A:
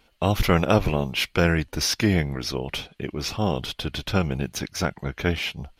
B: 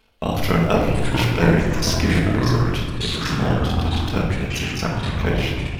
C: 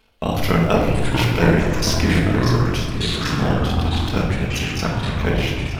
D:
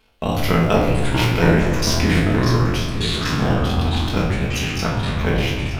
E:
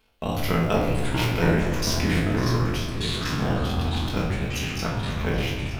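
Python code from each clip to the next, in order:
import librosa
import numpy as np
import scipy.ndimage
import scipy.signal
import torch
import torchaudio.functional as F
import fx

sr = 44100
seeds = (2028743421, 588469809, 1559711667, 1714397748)

y1 = fx.cycle_switch(x, sr, every=3, mode='muted')
y1 = fx.room_shoebox(y1, sr, seeds[0], volume_m3=560.0, walls='mixed', distance_m=1.5)
y1 = fx.echo_pitch(y1, sr, ms=430, semitones=-6, count=2, db_per_echo=-3.0)
y1 = y1 * 10.0 ** (-1.0 / 20.0)
y2 = y1 + 10.0 ** (-13.5 / 20.0) * np.pad(y1, (int(919 * sr / 1000.0), 0))[:len(y1)]
y2 = y2 * 10.0 ** (1.0 / 20.0)
y3 = fx.spec_trails(y2, sr, decay_s=0.38)
y3 = y3 * 10.0 ** (-1.0 / 20.0)
y4 = fx.high_shelf(y3, sr, hz=12000.0, db=5.5)
y4 = y4 + 10.0 ** (-17.5 / 20.0) * np.pad(y4, (int(546 * sr / 1000.0), 0))[:len(y4)]
y4 = y4 * 10.0 ** (-6.0 / 20.0)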